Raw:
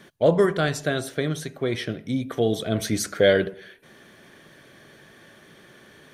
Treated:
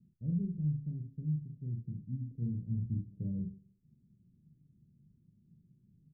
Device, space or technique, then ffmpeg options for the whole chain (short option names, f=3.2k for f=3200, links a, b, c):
the neighbour's flat through the wall: -filter_complex "[0:a]asettb=1/sr,asplit=3[a][b][c];[a]atrim=end=2.404[d];[b]atrim=start=2.4:end=3.39,asetpts=PTS-STARTPTS,afade=t=in:d=0.004:c=qsin,afade=t=out:st=0.986:d=0.004:c=qsin,asplit=2[e][f];[f]adelay=17,volume=-3dB[g];[e][g]amix=inputs=2:normalize=0,atrim=end_sample=43659[h];[c]atrim=start=3.386[i];[d][h]acrossfade=d=0.004:c1=hsin:c2=qsin[j];[j][i]acrossfade=d=0.004:c1=qsin:c2=hsin,lowpass=f=170:w=0.5412,lowpass=f=170:w=1.3066,equalizer=f=190:t=o:w=0.77:g=3,aecho=1:1:40|66:0.631|0.316,volume=-7dB"